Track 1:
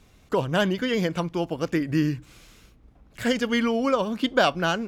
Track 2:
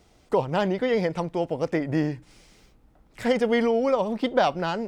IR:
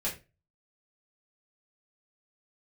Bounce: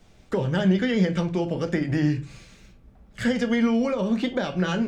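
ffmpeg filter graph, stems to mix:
-filter_complex "[0:a]lowpass=f=8200:w=0.5412,lowpass=f=8200:w=1.3066,alimiter=limit=0.126:level=0:latency=1:release=104,volume=0.794,asplit=2[s0][s1];[s1]volume=0.631[s2];[1:a]volume=0.75,asplit=2[s3][s4];[s4]apad=whole_len=214928[s5];[s0][s5]sidechaingate=range=0.0224:threshold=0.00178:ratio=16:detection=peak[s6];[2:a]atrim=start_sample=2205[s7];[s2][s7]afir=irnorm=-1:irlink=0[s8];[s6][s3][s8]amix=inputs=3:normalize=0,acrossover=split=340[s9][s10];[s10]acompressor=threshold=0.0562:ratio=6[s11];[s9][s11]amix=inputs=2:normalize=0"

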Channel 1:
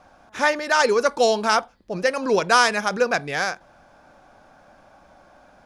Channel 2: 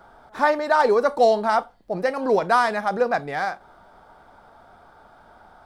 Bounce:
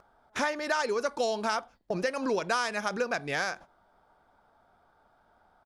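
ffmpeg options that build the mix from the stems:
-filter_complex "[0:a]volume=1.19[s0];[1:a]adelay=3.3,volume=0.188,asplit=2[s1][s2];[s2]apad=whole_len=249168[s3];[s0][s3]sidechaingate=range=0.0224:threshold=0.002:ratio=16:detection=peak[s4];[s4][s1]amix=inputs=2:normalize=0,acompressor=threshold=0.0398:ratio=4"

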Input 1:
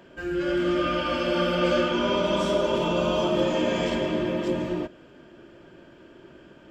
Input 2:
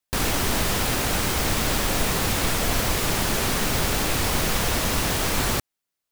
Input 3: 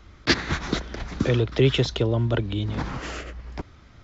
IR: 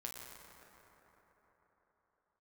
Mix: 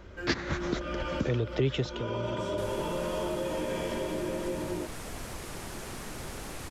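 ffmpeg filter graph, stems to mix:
-filter_complex "[0:a]aecho=1:1:2.1:0.32,alimiter=limit=0.133:level=0:latency=1:release=35,volume=0.708[s0];[1:a]lowpass=f=12000:w=0.5412,lowpass=f=12000:w=1.3066,adelay=2450,volume=0.168[s1];[2:a]volume=0.841,afade=t=out:st=1.78:d=0.27:silence=0.334965,asplit=2[s2][s3];[s3]apad=whole_len=295629[s4];[s0][s4]sidechaincompress=threshold=0.0398:ratio=8:attack=40:release=463[s5];[s5][s1][s2]amix=inputs=3:normalize=0,equalizer=f=3700:w=0.91:g=-4,acompressor=threshold=0.0178:ratio=1.5"

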